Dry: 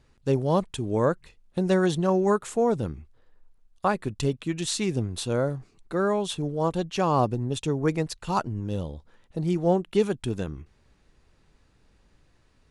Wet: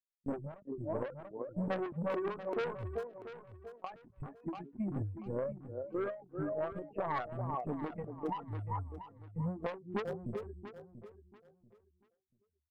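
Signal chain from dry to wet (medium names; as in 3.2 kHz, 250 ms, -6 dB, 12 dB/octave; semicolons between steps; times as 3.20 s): expander on every frequency bin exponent 3; Gaussian low-pass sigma 8.8 samples; LPC vocoder at 8 kHz pitch kept; speakerphone echo 390 ms, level -11 dB; saturation -30.5 dBFS, distortion -7 dB; tilt EQ +3.5 dB/octave; compression 6:1, threshold -48 dBFS, peak gain reduction 14 dB; on a send: feedback delay 687 ms, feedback 24%, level -12.5 dB; on the sum: endings held to a fixed fall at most 140 dB/s; trim +15 dB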